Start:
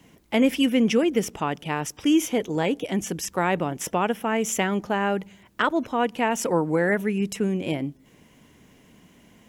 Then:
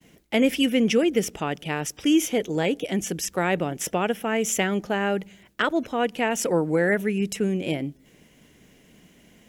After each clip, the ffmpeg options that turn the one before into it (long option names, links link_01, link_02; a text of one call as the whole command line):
ffmpeg -i in.wav -af "agate=range=-33dB:threshold=-53dB:ratio=3:detection=peak,equalizer=frequency=100:width_type=o:width=0.67:gain=-6,equalizer=frequency=250:width_type=o:width=0.67:gain=-3,equalizer=frequency=1000:width_type=o:width=0.67:gain=-8,volume=2dB" out.wav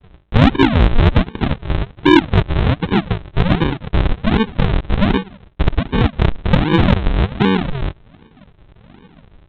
ffmpeg -i in.wav -af "aresample=8000,acrusher=samples=23:mix=1:aa=0.000001:lfo=1:lforange=23:lforate=1.3,aresample=44100,acontrast=79,volume=3.5dB" out.wav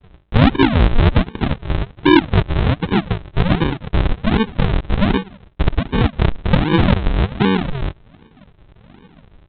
ffmpeg -i in.wav -af "aresample=11025,aresample=44100,volume=-1dB" out.wav